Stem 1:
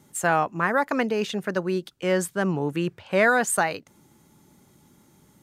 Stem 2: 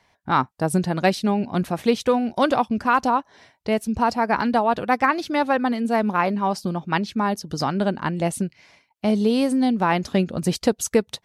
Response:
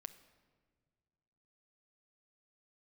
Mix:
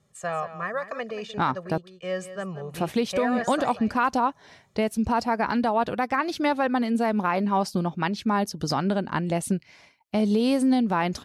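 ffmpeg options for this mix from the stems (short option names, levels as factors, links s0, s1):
-filter_complex "[0:a]lowpass=6900,aecho=1:1:1.7:0.89,volume=0.316,asplit=2[s0][s1];[s1]volume=0.237[s2];[1:a]adelay=1100,volume=1,asplit=3[s3][s4][s5];[s3]atrim=end=1.78,asetpts=PTS-STARTPTS,afade=t=out:st=1.776:d=0.004:c=hsin[s6];[s4]atrim=start=1.78:end=2.74,asetpts=PTS-STARTPTS,volume=0[s7];[s5]atrim=start=2.74,asetpts=PTS-STARTPTS,afade=t=in:d=0.004:c=hsin[s8];[s6][s7][s8]concat=n=3:v=0:a=1[s9];[s2]aecho=0:1:182:1[s10];[s0][s9][s10]amix=inputs=3:normalize=0,alimiter=limit=0.224:level=0:latency=1:release=156"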